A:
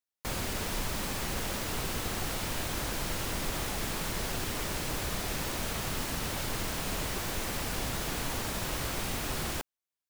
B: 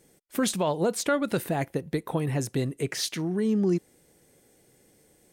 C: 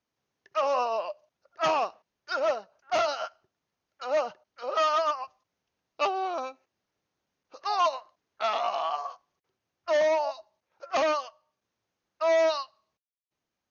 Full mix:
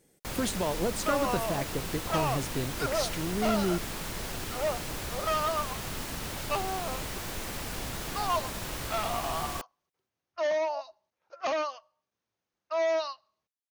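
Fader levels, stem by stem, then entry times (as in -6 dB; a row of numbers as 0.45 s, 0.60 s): -2.5 dB, -5.0 dB, -4.5 dB; 0.00 s, 0.00 s, 0.50 s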